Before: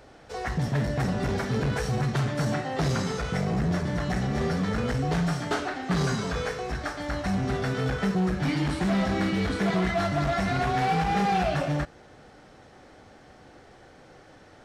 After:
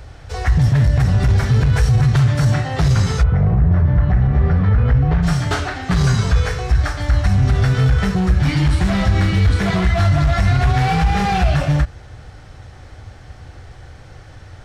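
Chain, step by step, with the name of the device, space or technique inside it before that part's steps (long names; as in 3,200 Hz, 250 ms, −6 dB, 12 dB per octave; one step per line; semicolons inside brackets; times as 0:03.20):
car stereo with a boomy subwoofer (low shelf with overshoot 140 Hz +12.5 dB, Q 1.5; brickwall limiter −15 dBFS, peak gain reduction 6.5 dB)
0:03.22–0:05.22: low-pass filter 1,200 Hz → 2,000 Hz 12 dB per octave
parametric band 480 Hz −4.5 dB 2.3 octaves
level +9 dB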